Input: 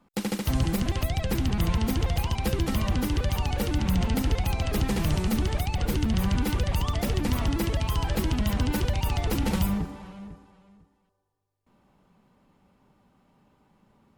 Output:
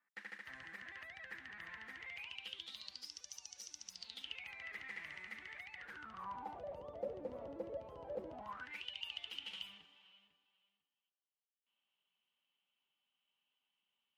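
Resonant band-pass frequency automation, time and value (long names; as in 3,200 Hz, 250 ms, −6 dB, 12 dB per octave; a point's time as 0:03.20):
resonant band-pass, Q 10
0:01.92 1,800 Hz
0:03.21 5,800 Hz
0:03.88 5,800 Hz
0:04.53 2,000 Hz
0:05.75 2,000 Hz
0:06.80 540 Hz
0:08.29 540 Hz
0:08.85 3,000 Hz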